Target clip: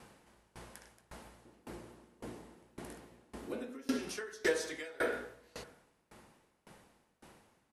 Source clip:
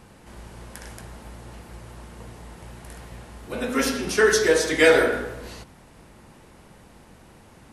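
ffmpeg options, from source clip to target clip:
-filter_complex "[0:a]asettb=1/sr,asplit=3[s0][s1][s2];[s0]atrim=end=1.454[s3];[s1]atrim=start=1.45:end=3.99,asetpts=PTS-STARTPTS,afade=t=in:d=0.004:c=qsin,afade=t=out:st=2.536:d=0.004:c=qsin,equalizer=f=300:w=0.98:g=12[s4];[s2]atrim=start=3.986[s5];[s3][s4]acrossfade=d=0.004:c1=hsin:c2=qsin[s6];[s6][s5]acrossfade=d=0.004:c1=qsin:c2=hsin,asplit=2[s7][s8];[s8]adelay=641.4,volume=0.0355,highshelf=f=4000:g=-14.4[s9];[s7][s9]amix=inputs=2:normalize=0,acompressor=threshold=0.0891:ratio=6,lowshelf=f=160:g=-10.5,aeval=exprs='val(0)*pow(10,-26*if(lt(mod(1.8*n/s,1),2*abs(1.8)/1000),1-mod(1.8*n/s,1)/(2*abs(1.8)/1000),(mod(1.8*n/s,1)-2*abs(1.8)/1000)/(1-2*abs(1.8)/1000))/20)':c=same,volume=0.75"

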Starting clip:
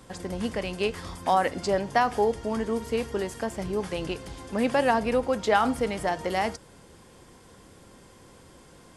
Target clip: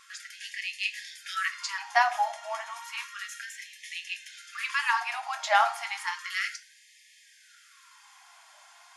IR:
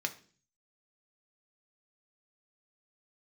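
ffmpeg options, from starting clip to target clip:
-filter_complex "[0:a]asettb=1/sr,asplit=3[s0][s1][s2];[s0]atrim=end=2.044[s3];[s1]atrim=start=2.04:end=4.34,asetpts=PTS-STARTPTS,afade=t=in:d=0.004:c=qsin,afade=t=out:st=2.296:d=0.004:c=qsin,bandreject=f=4700:w=10[s4];[s2]atrim=start=4.336[s5];[s3][s4]acrossfade=d=0.004:c1=hsin:c2=qsin[s6];[s6][s5]acrossfade=d=0.004:c1=qsin:c2=hsin[s7];[1:a]atrim=start_sample=2205[s8];[s7][s8]afir=irnorm=-1:irlink=0,afftfilt=real='re*gte(b*sr/1024,600*pow(1700/600,0.5+0.5*sin(2*PI*0.32*pts/sr)))':imag='im*gte(b*sr/1024,600*pow(1700/600,0.5+0.5*sin(2*PI*0.32*pts/sr)))':win_size=1024:overlap=0.75"

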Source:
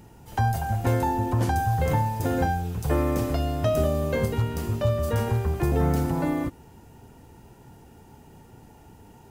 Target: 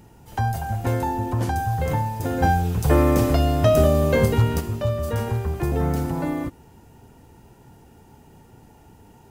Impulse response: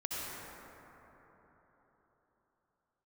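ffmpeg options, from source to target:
-filter_complex "[0:a]asplit=3[s0][s1][s2];[s0]afade=t=out:st=2.42:d=0.02[s3];[s1]acontrast=79,afade=t=in:st=2.42:d=0.02,afade=t=out:st=4.59:d=0.02[s4];[s2]afade=t=in:st=4.59:d=0.02[s5];[s3][s4][s5]amix=inputs=3:normalize=0"

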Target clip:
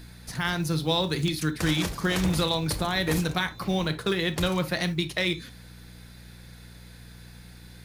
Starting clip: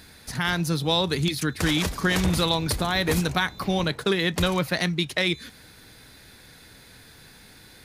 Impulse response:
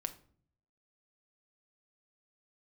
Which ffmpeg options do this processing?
-filter_complex "[0:a]acrusher=bits=8:mode=log:mix=0:aa=0.000001,aeval=exprs='val(0)+0.01*(sin(2*PI*60*n/s)+sin(2*PI*2*60*n/s)/2+sin(2*PI*3*60*n/s)/3+sin(2*PI*4*60*n/s)/4+sin(2*PI*5*60*n/s)/5)':c=same[s0];[1:a]atrim=start_sample=2205,atrim=end_sample=3528[s1];[s0][s1]afir=irnorm=-1:irlink=0,volume=0.794"

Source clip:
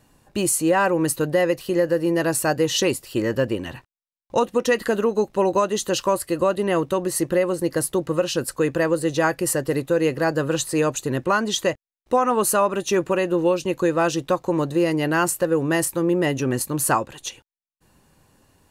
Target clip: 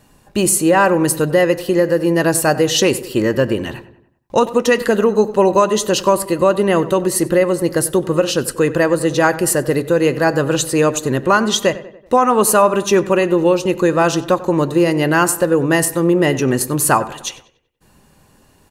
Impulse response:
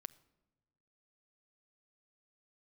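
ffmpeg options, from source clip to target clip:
-filter_complex "[0:a]asplit=2[s0][s1];[s1]adelay=95,lowpass=f=2900:p=1,volume=0.158,asplit=2[s2][s3];[s3]adelay=95,lowpass=f=2900:p=1,volume=0.51,asplit=2[s4][s5];[s5]adelay=95,lowpass=f=2900:p=1,volume=0.51,asplit=2[s6][s7];[s7]adelay=95,lowpass=f=2900:p=1,volume=0.51,asplit=2[s8][s9];[s9]adelay=95,lowpass=f=2900:p=1,volume=0.51[s10];[s0][s2][s4][s6][s8][s10]amix=inputs=6:normalize=0,asplit=2[s11][s12];[1:a]atrim=start_sample=2205,afade=t=out:st=0.42:d=0.01,atrim=end_sample=18963,asetrate=57330,aresample=44100[s13];[s12][s13]afir=irnorm=-1:irlink=0,volume=8.91[s14];[s11][s14]amix=inputs=2:normalize=0,volume=0.447"

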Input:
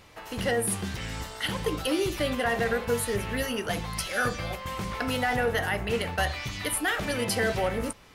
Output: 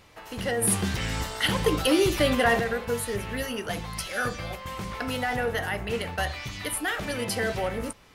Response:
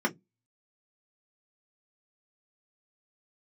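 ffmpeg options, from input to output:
-filter_complex "[0:a]asplit=3[s0][s1][s2];[s0]afade=t=out:st=0.61:d=0.02[s3];[s1]acontrast=79,afade=t=in:st=0.61:d=0.02,afade=t=out:st=2.59:d=0.02[s4];[s2]afade=t=in:st=2.59:d=0.02[s5];[s3][s4][s5]amix=inputs=3:normalize=0,volume=0.841"

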